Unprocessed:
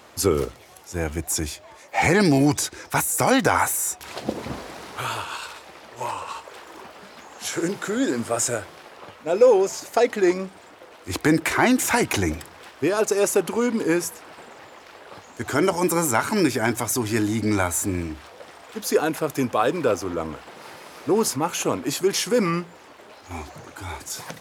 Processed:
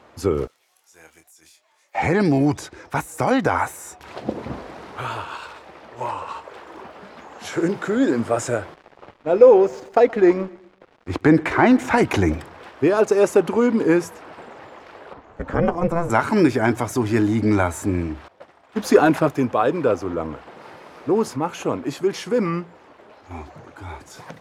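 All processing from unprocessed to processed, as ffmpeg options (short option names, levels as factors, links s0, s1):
-filter_complex "[0:a]asettb=1/sr,asplit=3[s0][s1][s2];[s0]atrim=end=0.474[s3];[s1]atrim=start=0.47:end=1.95,asetpts=PTS-STARTPTS,afade=t=in:d=0.004:c=qsin,afade=t=out:st=1.476:d=0.004:c=qsin,aderivative,acompressor=threshold=0.0158:ratio=6:attack=3.2:release=140:knee=1:detection=peak,asplit=2[s4][s5];[s5]adelay=25,volume=0.531[s6];[s4][s6]amix=inputs=2:normalize=0,atrim=end_sample=65268[s7];[s2]atrim=start=1.946[s8];[s3][s7]acrossfade=d=0.004:c1=hsin:c2=qsin[s9];[s9][s8]acrossfade=d=0.004:c1=qsin:c2=hsin,asettb=1/sr,asplit=3[s10][s11][s12];[s10]atrim=end=8.744[s13];[s11]atrim=start=8.74:end=11.98,asetpts=PTS-STARTPTS,afade=t=in:d=0.004:c=qsin,afade=t=out:st=3.236:d=0.004:c=qsin,lowpass=f=3900:p=1,aeval=exprs='sgn(val(0))*max(abs(val(0))-0.00631,0)':c=same,aecho=1:1:125|250|375:0.0794|0.0334|0.014,atrim=end_sample=142884[s14];[s12]atrim=start=11.976[s15];[s13][s14]acrossfade=d=0.004:c1=hsin:c2=qsin[s16];[s16][s15]acrossfade=d=0.004:c1=qsin:c2=hsin,asettb=1/sr,asplit=3[s17][s18][s19];[s17]atrim=end=15.134[s20];[s18]atrim=start=15.13:end=16.1,asetpts=PTS-STARTPTS,afade=t=in:d=0.004:c=qsin,afade=t=out:st=0.966:d=0.004:c=qsin,lowpass=f=1600:p=1,aeval=exprs='val(0)*sin(2*PI*170*n/s)':c=same[s21];[s19]atrim=start=16.096[s22];[s20][s21]acrossfade=d=0.004:c1=hsin:c2=qsin[s23];[s23][s22]acrossfade=d=0.004:c1=qsin:c2=hsin,asettb=1/sr,asplit=3[s24][s25][s26];[s24]atrim=end=18.284[s27];[s25]atrim=start=18.28:end=19.29,asetpts=PTS-STARTPTS,afade=t=in:d=0.004:c=qsin,afade=t=out:st=1.006:d=0.004:c=qsin,acontrast=76,bandreject=f=470:w=6.7,agate=range=0.0224:threshold=0.0398:ratio=3:release=100:detection=peak[s28];[s26]atrim=start=19.286[s29];[s27][s28]acrossfade=d=0.004:c1=hsin:c2=qsin[s30];[s30][s29]acrossfade=d=0.004:c1=qsin:c2=hsin,lowpass=f=1500:p=1,dynaudnorm=f=890:g=13:m=3.76"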